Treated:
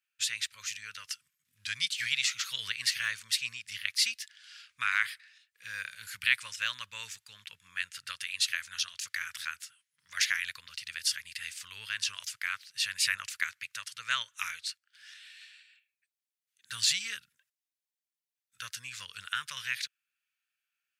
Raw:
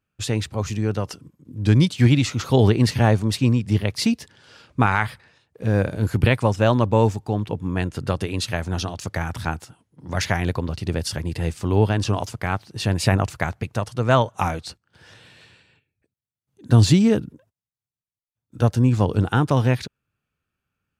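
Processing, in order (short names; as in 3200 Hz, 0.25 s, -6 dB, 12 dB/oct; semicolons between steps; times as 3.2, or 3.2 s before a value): inverse Chebyshev high-pass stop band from 840 Hz, stop band 40 dB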